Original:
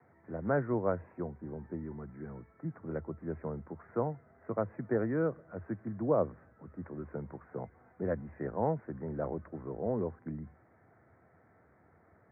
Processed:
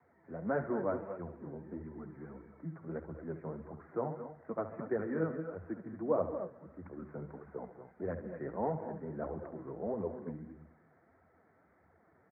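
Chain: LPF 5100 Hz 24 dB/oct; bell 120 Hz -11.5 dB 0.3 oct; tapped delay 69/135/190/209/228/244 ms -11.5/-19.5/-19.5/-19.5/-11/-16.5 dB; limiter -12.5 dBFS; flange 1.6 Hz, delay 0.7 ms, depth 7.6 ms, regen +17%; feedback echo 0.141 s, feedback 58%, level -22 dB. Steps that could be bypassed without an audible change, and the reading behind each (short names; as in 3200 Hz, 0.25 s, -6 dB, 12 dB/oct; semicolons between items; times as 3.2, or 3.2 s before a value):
LPF 5100 Hz: input band ends at 1900 Hz; limiter -12.5 dBFS: input peak -16.0 dBFS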